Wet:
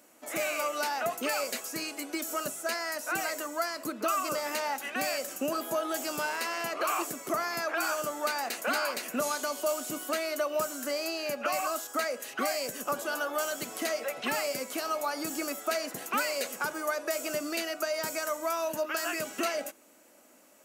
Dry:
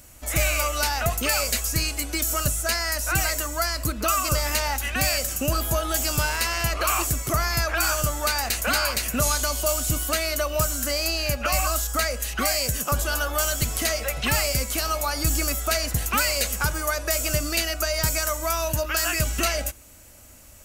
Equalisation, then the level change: HPF 250 Hz 24 dB/oct; high shelf 2000 Hz -10.5 dB; -2.0 dB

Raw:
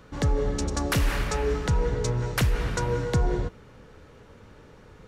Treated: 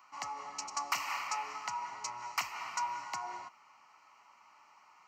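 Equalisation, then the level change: resonant high-pass 970 Hz, resonance Q 1.6; fixed phaser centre 2400 Hz, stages 8; -3.5 dB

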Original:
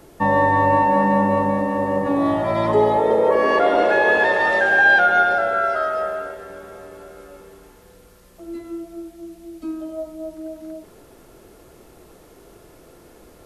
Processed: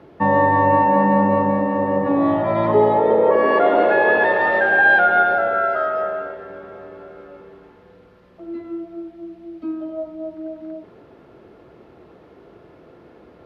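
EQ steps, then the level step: HPF 92 Hz; air absorption 340 m; +2.5 dB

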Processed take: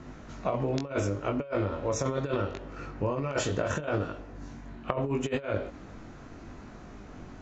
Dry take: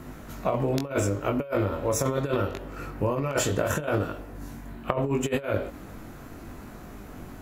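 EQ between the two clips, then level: steep low-pass 7000 Hz 72 dB/oct; -3.5 dB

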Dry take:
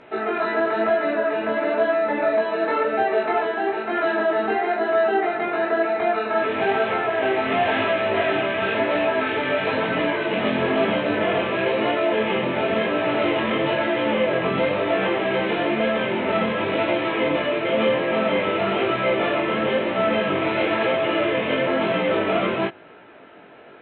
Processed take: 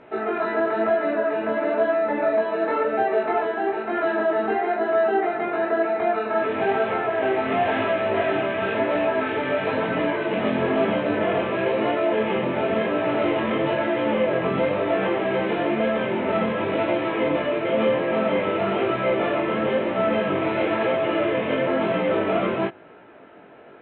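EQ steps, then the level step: high shelf 2600 Hz -10.5 dB; 0.0 dB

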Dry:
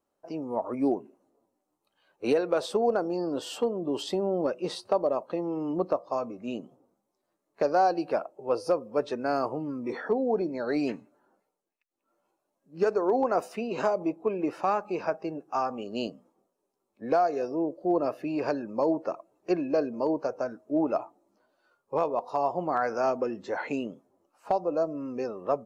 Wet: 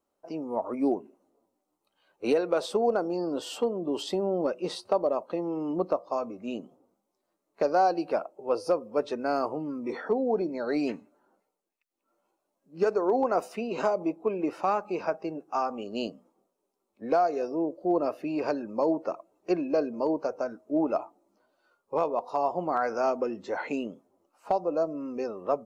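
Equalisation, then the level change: bell 130 Hz -12.5 dB 0.21 oct; notch 1700 Hz, Q 14; 0.0 dB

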